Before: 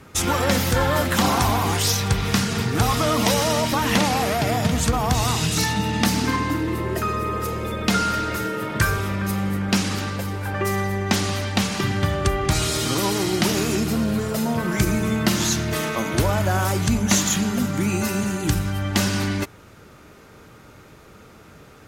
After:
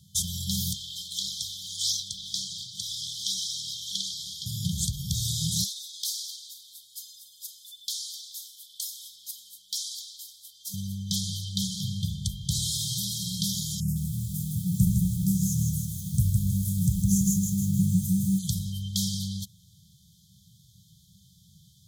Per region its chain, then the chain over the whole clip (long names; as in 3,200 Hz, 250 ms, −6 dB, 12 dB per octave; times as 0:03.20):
0:00.73–0:04.46: three-way crossover with the lows and the highs turned down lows −22 dB, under 470 Hz, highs −15 dB, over 7,800 Hz + phase shifter 1.7 Hz, delay 4.7 ms, feedback 33%
0:05.64–0:10.74: inverse Chebyshev high-pass filter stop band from 1,300 Hz, stop band 50 dB + hard clipping −19 dBFS
0:13.80–0:18.39: Butterworth band-reject 3,500 Hz, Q 0.55 + low-shelf EQ 360 Hz +7.5 dB + feedback echo at a low word length 159 ms, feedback 55%, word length 6 bits, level −4 dB
whole clip: high-pass filter 67 Hz; brick-wall band-stop 200–3,100 Hz; low-shelf EQ 130 Hz −6 dB; level −3 dB